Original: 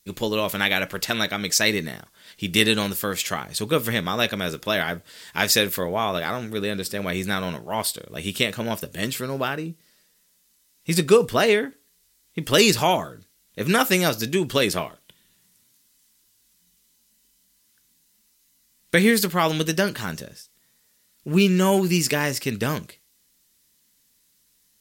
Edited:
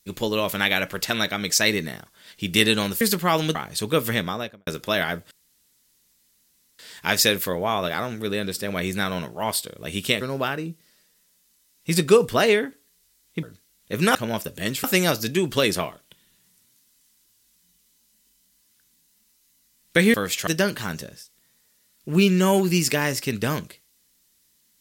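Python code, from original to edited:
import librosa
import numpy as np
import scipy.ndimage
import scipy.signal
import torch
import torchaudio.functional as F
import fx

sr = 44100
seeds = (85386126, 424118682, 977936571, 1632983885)

y = fx.studio_fade_out(x, sr, start_s=3.96, length_s=0.5)
y = fx.edit(y, sr, fx.swap(start_s=3.01, length_s=0.33, other_s=19.12, other_length_s=0.54),
    fx.insert_room_tone(at_s=5.1, length_s=1.48),
    fx.move(start_s=8.52, length_s=0.69, to_s=13.82),
    fx.cut(start_s=12.43, length_s=0.67), tone=tone)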